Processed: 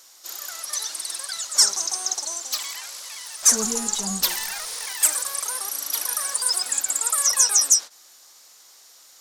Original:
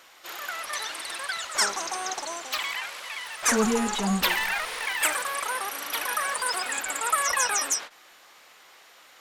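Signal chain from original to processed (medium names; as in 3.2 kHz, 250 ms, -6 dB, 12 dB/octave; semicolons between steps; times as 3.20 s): resonant high shelf 3.8 kHz +13.5 dB, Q 1.5; trim -6 dB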